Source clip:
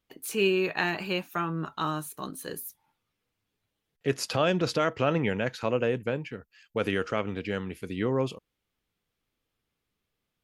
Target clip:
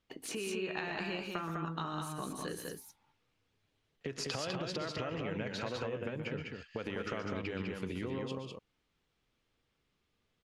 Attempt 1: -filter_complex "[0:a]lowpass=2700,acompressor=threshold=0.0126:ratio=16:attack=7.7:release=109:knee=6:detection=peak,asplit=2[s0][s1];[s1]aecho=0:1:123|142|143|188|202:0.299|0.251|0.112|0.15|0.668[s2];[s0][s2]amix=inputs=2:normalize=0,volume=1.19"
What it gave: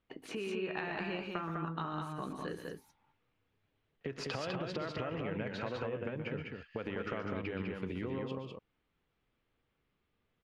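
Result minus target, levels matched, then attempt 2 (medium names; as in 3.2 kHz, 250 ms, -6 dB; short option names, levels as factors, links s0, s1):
8 kHz band -11.0 dB
-filter_complex "[0:a]lowpass=6500,acompressor=threshold=0.0126:ratio=16:attack=7.7:release=109:knee=6:detection=peak,asplit=2[s0][s1];[s1]aecho=0:1:123|142|143|188|202:0.299|0.251|0.112|0.15|0.668[s2];[s0][s2]amix=inputs=2:normalize=0,volume=1.19"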